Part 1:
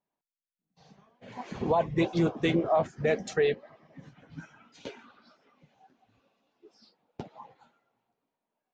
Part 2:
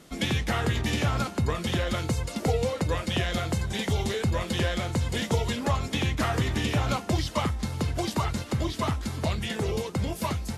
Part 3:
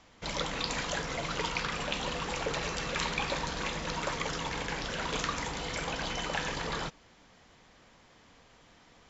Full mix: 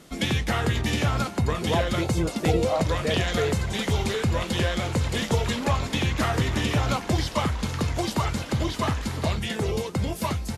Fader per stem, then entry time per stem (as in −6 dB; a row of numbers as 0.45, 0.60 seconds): −2.0, +2.0, −5.0 decibels; 0.00, 0.00, 2.50 seconds